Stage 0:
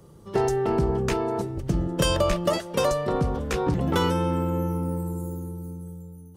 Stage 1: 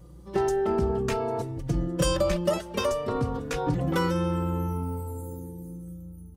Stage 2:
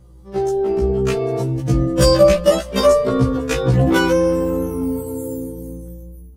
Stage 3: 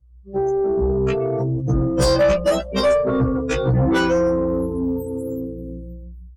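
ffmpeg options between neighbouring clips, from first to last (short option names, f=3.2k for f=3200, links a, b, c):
-filter_complex "[0:a]aeval=exprs='val(0)+0.00501*(sin(2*PI*60*n/s)+sin(2*PI*2*60*n/s)/2+sin(2*PI*3*60*n/s)/3+sin(2*PI*4*60*n/s)/4+sin(2*PI*5*60*n/s)/5)':c=same,asplit=2[a][b];[b]adelay=3.6,afreqshift=0.52[c];[a][c]amix=inputs=2:normalize=1"
-af "dynaudnorm=f=480:g=5:m=13.5dB,afftfilt=real='re*1.73*eq(mod(b,3),0)':imag='im*1.73*eq(mod(b,3),0)':win_size=2048:overlap=0.75,volume=3dB"
-af "afftdn=nr=29:nf=-29,asoftclip=type=tanh:threshold=-11.5dB"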